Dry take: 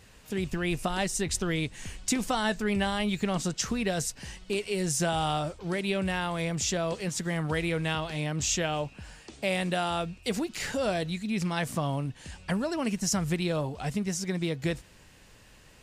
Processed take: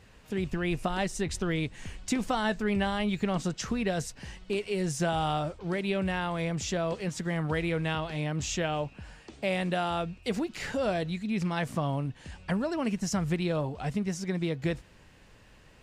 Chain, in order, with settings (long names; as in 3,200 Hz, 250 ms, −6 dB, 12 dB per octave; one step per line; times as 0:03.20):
high-shelf EQ 4,800 Hz −11 dB